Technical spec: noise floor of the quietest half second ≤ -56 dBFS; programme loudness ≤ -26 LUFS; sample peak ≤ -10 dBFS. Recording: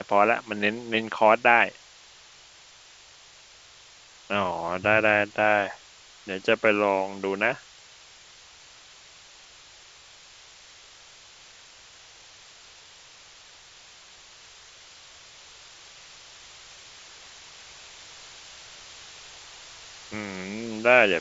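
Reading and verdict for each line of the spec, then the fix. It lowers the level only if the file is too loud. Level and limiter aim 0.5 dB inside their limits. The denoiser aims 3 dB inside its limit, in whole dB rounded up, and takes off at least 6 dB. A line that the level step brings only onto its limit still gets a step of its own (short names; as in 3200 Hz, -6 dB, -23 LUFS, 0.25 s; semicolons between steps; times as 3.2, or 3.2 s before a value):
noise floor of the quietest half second -52 dBFS: fail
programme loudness -23.5 LUFS: fail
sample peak -4.0 dBFS: fail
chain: denoiser 6 dB, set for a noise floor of -52 dBFS; gain -3 dB; limiter -10.5 dBFS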